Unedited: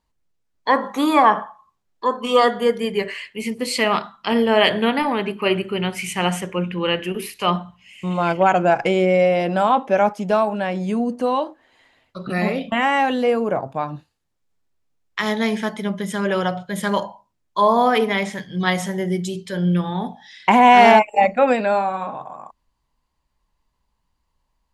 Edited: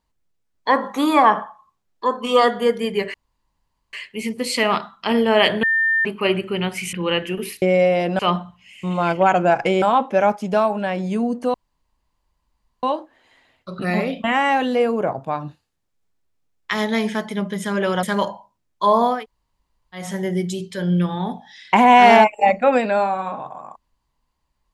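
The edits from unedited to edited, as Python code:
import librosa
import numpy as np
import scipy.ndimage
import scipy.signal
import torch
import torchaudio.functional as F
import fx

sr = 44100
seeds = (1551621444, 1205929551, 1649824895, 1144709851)

y = fx.edit(x, sr, fx.insert_room_tone(at_s=3.14, length_s=0.79),
    fx.bleep(start_s=4.84, length_s=0.42, hz=1800.0, db=-15.0),
    fx.cut(start_s=6.14, length_s=0.56),
    fx.move(start_s=9.02, length_s=0.57, to_s=7.39),
    fx.insert_room_tone(at_s=11.31, length_s=1.29),
    fx.cut(start_s=16.51, length_s=0.27),
    fx.room_tone_fill(start_s=17.89, length_s=0.9, crossfade_s=0.24), tone=tone)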